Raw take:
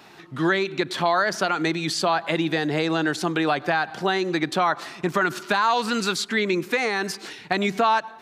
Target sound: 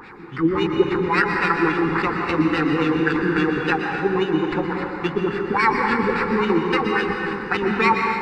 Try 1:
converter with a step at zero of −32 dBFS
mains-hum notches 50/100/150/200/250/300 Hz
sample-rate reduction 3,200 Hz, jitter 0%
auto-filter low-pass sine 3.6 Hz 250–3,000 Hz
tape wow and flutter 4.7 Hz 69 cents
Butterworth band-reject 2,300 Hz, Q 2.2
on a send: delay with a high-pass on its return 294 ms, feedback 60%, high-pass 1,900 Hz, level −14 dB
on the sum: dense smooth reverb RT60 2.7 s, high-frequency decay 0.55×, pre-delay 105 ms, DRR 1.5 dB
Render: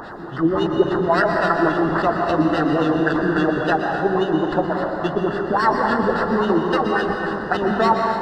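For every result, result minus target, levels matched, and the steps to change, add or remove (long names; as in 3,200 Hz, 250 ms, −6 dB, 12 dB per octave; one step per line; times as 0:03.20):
converter with a step at zero: distortion +8 dB; 2,000 Hz band −3.0 dB
change: converter with a step at zero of −41 dBFS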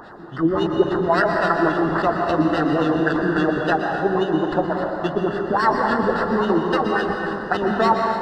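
2,000 Hz band −3.0 dB
change: Butterworth band-reject 640 Hz, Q 2.2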